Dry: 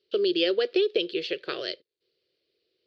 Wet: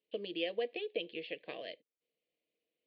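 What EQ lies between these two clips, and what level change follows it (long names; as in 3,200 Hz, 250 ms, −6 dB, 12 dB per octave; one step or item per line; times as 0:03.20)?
loudspeaker in its box 100–2,300 Hz, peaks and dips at 110 Hz −8 dB, 170 Hz −6 dB, 380 Hz −4 dB, 550 Hz −10 dB, 870 Hz −5 dB, 1,300 Hz −10 dB
parametric band 270 Hz −3 dB 0.86 octaves
phaser with its sweep stopped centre 380 Hz, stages 6
+1.0 dB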